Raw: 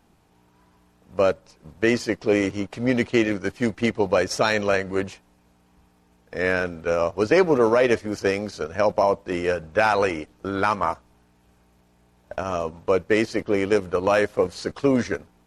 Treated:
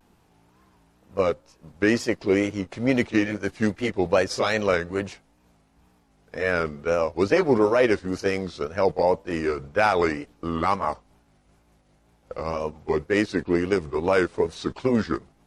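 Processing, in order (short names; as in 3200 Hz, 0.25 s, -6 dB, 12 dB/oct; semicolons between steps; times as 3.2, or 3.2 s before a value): gliding pitch shift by -2.5 st starting unshifted; wow and flutter 130 cents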